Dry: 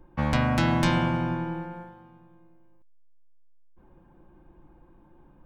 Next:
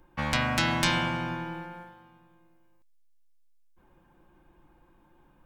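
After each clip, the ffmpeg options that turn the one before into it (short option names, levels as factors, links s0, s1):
-af "tiltshelf=f=1200:g=-7"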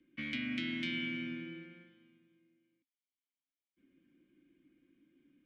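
-filter_complex "[0:a]acrossover=split=530|1200[s0][s1][s2];[s0]acompressor=threshold=0.0251:ratio=4[s3];[s1]acompressor=threshold=0.00891:ratio=4[s4];[s2]acompressor=threshold=0.0282:ratio=4[s5];[s3][s4][s5]amix=inputs=3:normalize=0,acrossover=split=380|5100[s6][s7][s8];[s8]alimiter=level_in=1.19:limit=0.0631:level=0:latency=1:release=266,volume=0.841[s9];[s6][s7][s9]amix=inputs=3:normalize=0,asplit=3[s10][s11][s12];[s10]bandpass=f=270:t=q:w=8,volume=1[s13];[s11]bandpass=f=2290:t=q:w=8,volume=0.501[s14];[s12]bandpass=f=3010:t=q:w=8,volume=0.355[s15];[s13][s14][s15]amix=inputs=3:normalize=0,volume=1.88"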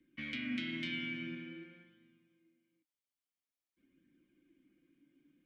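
-af "flanger=delay=0.5:depth=6.6:regen=59:speed=0.49:shape=sinusoidal,volume=1.33"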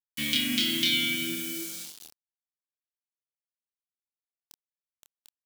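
-filter_complex "[0:a]acrusher=bits=9:mix=0:aa=0.000001,aexciter=amount=6.5:drive=5.8:freq=3100,asplit=2[s0][s1];[s1]adelay=27,volume=0.596[s2];[s0][s2]amix=inputs=2:normalize=0,volume=2.24"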